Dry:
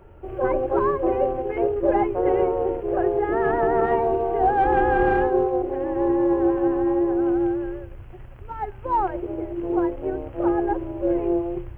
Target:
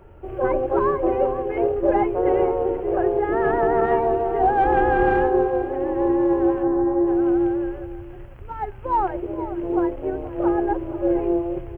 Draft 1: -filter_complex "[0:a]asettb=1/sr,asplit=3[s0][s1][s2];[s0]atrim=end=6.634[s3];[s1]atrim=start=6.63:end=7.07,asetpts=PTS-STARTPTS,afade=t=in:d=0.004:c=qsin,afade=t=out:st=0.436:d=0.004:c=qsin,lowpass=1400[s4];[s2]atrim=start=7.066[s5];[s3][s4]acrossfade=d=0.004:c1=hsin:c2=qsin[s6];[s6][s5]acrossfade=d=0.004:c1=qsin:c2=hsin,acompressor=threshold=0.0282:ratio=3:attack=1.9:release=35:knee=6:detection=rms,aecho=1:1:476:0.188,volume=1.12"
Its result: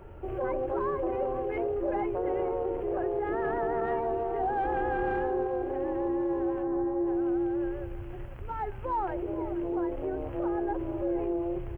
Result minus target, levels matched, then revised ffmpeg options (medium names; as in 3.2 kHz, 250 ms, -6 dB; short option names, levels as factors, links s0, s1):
compression: peak gain reduction +13 dB
-filter_complex "[0:a]asettb=1/sr,asplit=3[s0][s1][s2];[s0]atrim=end=6.634[s3];[s1]atrim=start=6.63:end=7.07,asetpts=PTS-STARTPTS,afade=t=in:d=0.004:c=qsin,afade=t=out:st=0.436:d=0.004:c=qsin,lowpass=1400[s4];[s2]atrim=start=7.066[s5];[s3][s4]acrossfade=d=0.004:c1=hsin:c2=qsin[s6];[s6][s5]acrossfade=d=0.004:c1=qsin:c2=hsin,aecho=1:1:476:0.188,volume=1.12"